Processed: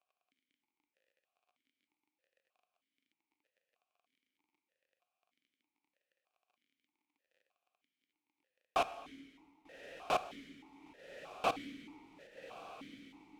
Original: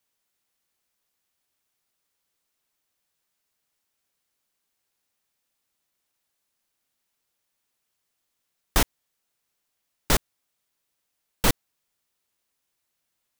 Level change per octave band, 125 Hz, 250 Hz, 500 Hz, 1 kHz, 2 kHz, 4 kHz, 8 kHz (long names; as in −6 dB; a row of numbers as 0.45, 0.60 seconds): −25.0, −14.0, −5.0, −3.0, −11.5, −14.5, −24.5 decibels